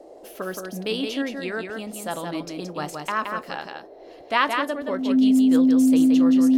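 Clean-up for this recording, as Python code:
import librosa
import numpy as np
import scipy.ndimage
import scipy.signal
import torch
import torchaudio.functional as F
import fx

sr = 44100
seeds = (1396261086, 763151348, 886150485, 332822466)

y = fx.notch(x, sr, hz=260.0, q=30.0)
y = fx.noise_reduce(y, sr, print_start_s=3.81, print_end_s=4.31, reduce_db=22.0)
y = fx.fix_echo_inverse(y, sr, delay_ms=172, level_db=-5.0)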